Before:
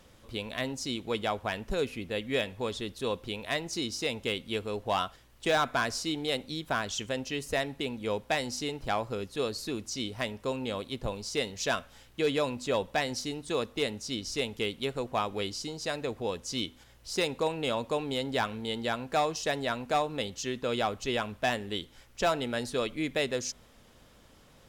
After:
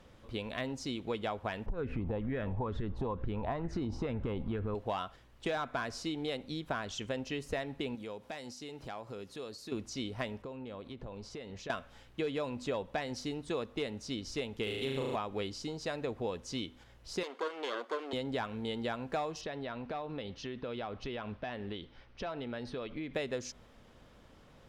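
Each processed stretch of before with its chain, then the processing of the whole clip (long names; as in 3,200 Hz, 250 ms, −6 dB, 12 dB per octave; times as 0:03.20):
0:01.66–0:04.75: spectral tilt −4.5 dB per octave + downward compressor, threshold −29 dBFS + auto-filter bell 2.2 Hz 820–1,700 Hz +15 dB
0:07.95–0:09.72: high-pass filter 170 Hz 6 dB per octave + bass and treble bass +1 dB, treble +6 dB + downward compressor 3 to 1, threshold −42 dBFS
0:10.42–0:11.70: high-shelf EQ 4,600 Hz −10.5 dB + downward compressor 12 to 1, threshold −39 dBFS
0:14.63–0:15.16: high-shelf EQ 7,100 Hz +11.5 dB + flutter between parallel walls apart 6.4 metres, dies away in 1.2 s
0:17.23–0:18.13: lower of the sound and its delayed copy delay 0.61 ms + high-pass filter 350 Hz 24 dB per octave + high-shelf EQ 10,000 Hz −9 dB
0:19.41–0:23.14: Savitzky-Golay smoothing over 15 samples + downward compressor, threshold −35 dBFS
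whole clip: downward compressor, threshold −31 dBFS; low-pass filter 2,500 Hz 6 dB per octave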